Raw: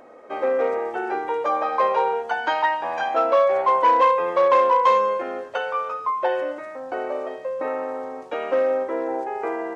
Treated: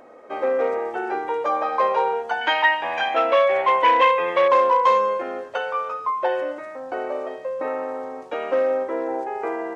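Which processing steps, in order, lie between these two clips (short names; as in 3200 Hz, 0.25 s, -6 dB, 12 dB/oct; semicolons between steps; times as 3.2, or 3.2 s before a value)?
2.41–4.48 band shelf 2500 Hz +9.5 dB 1.2 oct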